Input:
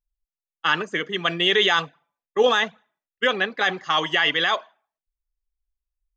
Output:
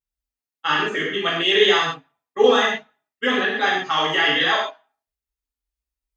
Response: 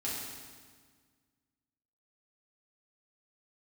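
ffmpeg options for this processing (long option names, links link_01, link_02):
-filter_complex "[0:a]highpass=52[link_01];[1:a]atrim=start_sample=2205,atrim=end_sample=6615[link_02];[link_01][link_02]afir=irnorm=-1:irlink=0"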